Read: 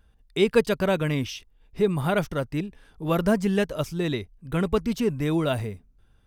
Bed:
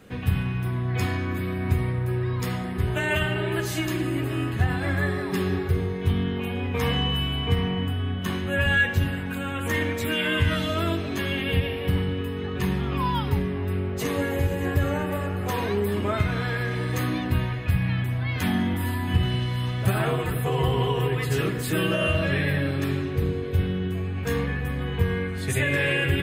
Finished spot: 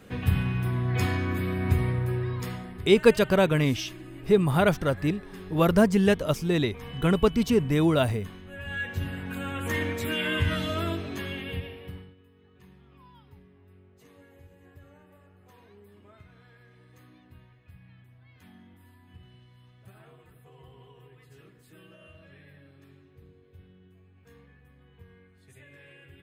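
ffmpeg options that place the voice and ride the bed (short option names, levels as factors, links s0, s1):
-filter_complex "[0:a]adelay=2500,volume=1.26[s0];[1:a]volume=4.47,afade=t=out:st=1.92:d=0.98:silence=0.149624,afade=t=in:st=8.61:d=0.83:silence=0.211349,afade=t=out:st=10.72:d=1.43:silence=0.0530884[s1];[s0][s1]amix=inputs=2:normalize=0"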